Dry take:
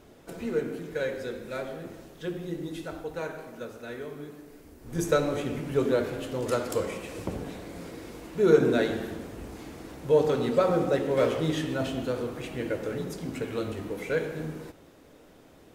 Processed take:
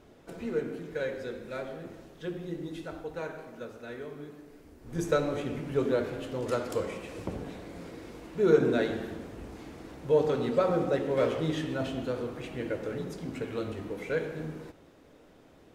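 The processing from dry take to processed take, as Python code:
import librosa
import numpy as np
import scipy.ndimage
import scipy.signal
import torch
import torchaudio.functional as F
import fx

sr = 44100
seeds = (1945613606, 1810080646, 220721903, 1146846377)

y = fx.high_shelf(x, sr, hz=7700.0, db=-9.0)
y = y * 10.0 ** (-2.5 / 20.0)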